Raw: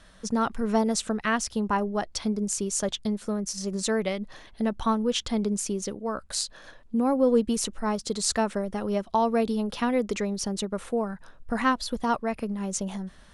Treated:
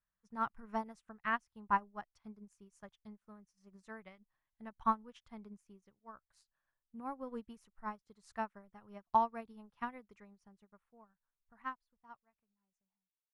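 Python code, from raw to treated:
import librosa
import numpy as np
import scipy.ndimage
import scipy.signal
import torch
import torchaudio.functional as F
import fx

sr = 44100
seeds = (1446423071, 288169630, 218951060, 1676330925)

y = fx.fade_out_tail(x, sr, length_s=3.45)
y = fx.graphic_eq(y, sr, hz=(125, 250, 500, 1000, 2000, 4000, 8000), db=(5, -5, -9, 6, 3, -8, -9))
y = fx.upward_expand(y, sr, threshold_db=-42.0, expansion=2.5)
y = y * librosa.db_to_amplitude(-5.0)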